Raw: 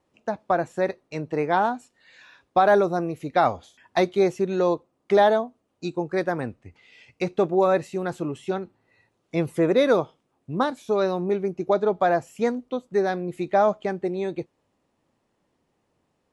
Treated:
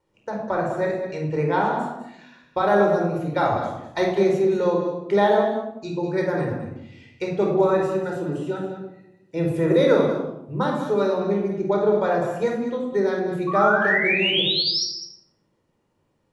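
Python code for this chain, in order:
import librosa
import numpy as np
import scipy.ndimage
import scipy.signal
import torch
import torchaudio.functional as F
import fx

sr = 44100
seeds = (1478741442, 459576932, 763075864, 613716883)

p1 = fx.notch_comb(x, sr, f0_hz=1100.0, at=(7.73, 9.45))
p2 = fx.spec_paint(p1, sr, seeds[0], shape='rise', start_s=13.47, length_s=1.37, low_hz=1100.0, high_hz=5700.0, level_db=-22.0)
p3 = p2 + fx.echo_single(p2, sr, ms=200, db=-10.5, dry=0)
p4 = fx.room_shoebox(p3, sr, seeds[1], volume_m3=2200.0, walls='furnished', distance_m=4.6)
y = p4 * librosa.db_to_amplitude(-4.5)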